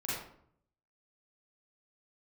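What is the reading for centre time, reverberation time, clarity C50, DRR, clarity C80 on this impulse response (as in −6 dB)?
68 ms, 0.65 s, −1.5 dB, −8.5 dB, 3.5 dB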